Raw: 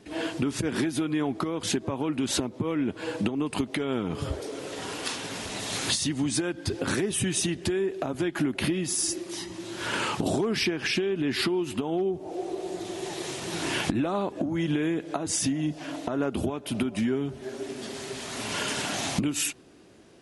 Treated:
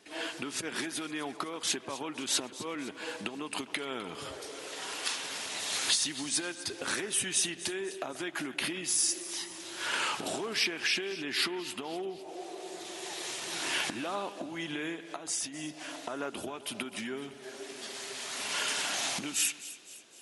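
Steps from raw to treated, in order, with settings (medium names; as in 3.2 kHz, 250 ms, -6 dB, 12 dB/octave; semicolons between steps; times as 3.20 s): 14.95–15.54 s: compression, threshold -30 dBFS, peak gain reduction 7.5 dB; high-pass 1.2 kHz 6 dB/octave; two-band feedback delay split 2.4 kHz, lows 133 ms, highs 255 ms, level -15 dB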